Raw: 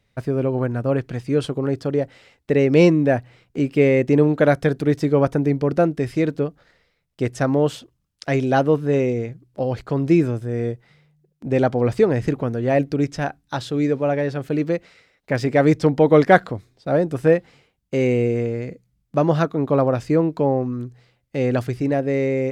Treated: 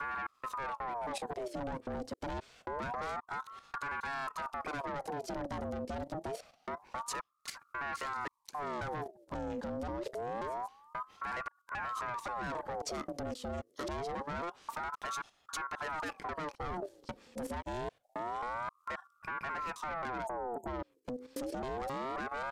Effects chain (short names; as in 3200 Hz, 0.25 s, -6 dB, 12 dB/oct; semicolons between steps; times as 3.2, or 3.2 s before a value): slices in reverse order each 0.267 s, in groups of 2; spectral delete 20.27–20.67, 440–7100 Hz; compressor 4:1, threshold -24 dBFS, peak gain reduction 14.5 dB; soft clip -28.5 dBFS, distortion -9 dB; downsampling 32000 Hz; limiter -31.5 dBFS, peak gain reduction 4 dB; graphic EQ 250/500/2000/4000 Hz -10/-8/-9/-3 dB; level quantiser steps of 11 dB; ring modulator with a swept carrier 830 Hz, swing 55%, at 0.26 Hz; gain +9 dB